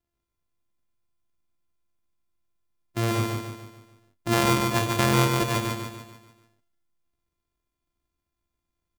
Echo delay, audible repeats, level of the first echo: 146 ms, 5, -3.5 dB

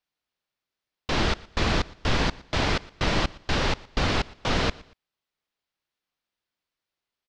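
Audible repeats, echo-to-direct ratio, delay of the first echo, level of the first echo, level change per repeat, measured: 2, -21.5 dB, 117 ms, -22.0 dB, -9.5 dB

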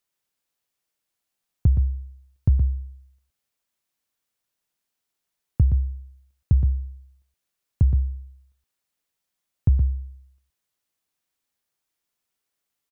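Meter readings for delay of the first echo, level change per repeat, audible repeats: 120 ms, no regular repeats, 1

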